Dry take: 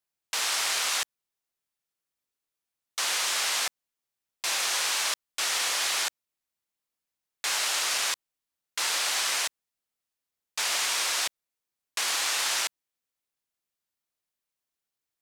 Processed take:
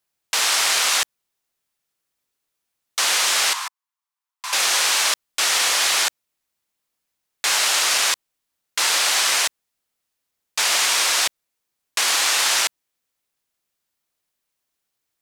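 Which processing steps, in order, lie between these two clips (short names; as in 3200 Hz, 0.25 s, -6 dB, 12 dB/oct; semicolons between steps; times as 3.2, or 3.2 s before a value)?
3.53–4.53 ladder high-pass 930 Hz, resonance 70%; gain +8.5 dB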